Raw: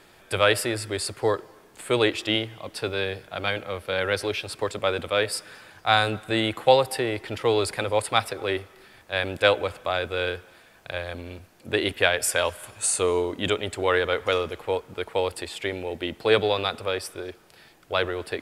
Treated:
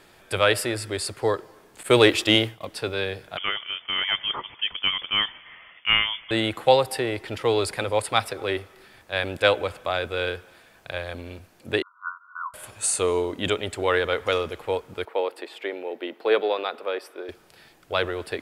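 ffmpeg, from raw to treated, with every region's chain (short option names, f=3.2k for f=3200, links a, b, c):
-filter_complex "[0:a]asettb=1/sr,asplit=3[a][b][c];[a]atrim=end=1.834[d];[b]atrim=start=1.83:end=2.65,asetpts=PTS-STARTPTS,afade=t=in:d=0.004:c=qsin,afade=t=out:st=0.816:d=0.004:c=qsin,agate=range=-33dB:threshold=-36dB:ratio=3:release=100:detection=peak,highshelf=f=8.9k:g=6.5,acontrast=49[e];[c]atrim=start=2.646[f];[d][e]acrossfade=d=0.004:c1=hsin:c2=qsin[g];[g][f]acrossfade=d=0.004:c1=qsin:c2=hsin,asettb=1/sr,asplit=3[h][i][j];[h]atrim=end=3.374[k];[i]atrim=start=3.37:end=6.31,asetpts=PTS-STARTPTS,afade=t=in:d=0.004:c=qsin,afade=t=out:st=2.936:d=0.004:c=qsin,highpass=200,lowpass=f=3.1k:t=q:w=0.5098,lowpass=f=3.1k:t=q:w=0.6013,lowpass=f=3.1k:t=q:w=0.9,lowpass=f=3.1k:t=q:w=2.563,afreqshift=-3600[l];[j]atrim=start=6.306[m];[k][l]acrossfade=d=0.004:c1=hsin:c2=qsin[n];[n][m]acrossfade=d=0.004:c1=qsin:c2=hsin,asettb=1/sr,asplit=3[o][p][q];[o]atrim=end=11.824[r];[p]atrim=start=11.82:end=12.54,asetpts=PTS-STARTPTS,afade=t=in:d=0.004:c=qsin,afade=t=out:st=0.716:d=0.004:c=qsin,asuperpass=centerf=1200:order=20:qfactor=2.4,acompressor=mode=upward:threshold=-48dB:ratio=2.5:attack=3.2:release=140:knee=2.83:detection=peak[s];[q]atrim=start=12.536[t];[r][s]acrossfade=d=0.004:c1=hsin:c2=qsin[u];[u][t]acrossfade=d=0.004:c1=qsin:c2=hsin,asettb=1/sr,asplit=3[v][w][x];[v]atrim=end=15.054[y];[w]atrim=start=15.05:end=17.29,asetpts=PTS-STARTPTS,afade=t=in:d=0.004:c=qsin,afade=t=out:st=2.236:d=0.004:c=qsin,highpass=f=300:w=0.5412,highpass=f=300:w=1.3066,equalizer=f=8.1k:t=o:w=1.9:g=-15[z];[x]atrim=start=17.286[aa];[y][z]acrossfade=d=0.004:c1=hsin:c2=qsin[ab];[ab][aa]acrossfade=d=0.004:c1=qsin:c2=hsin"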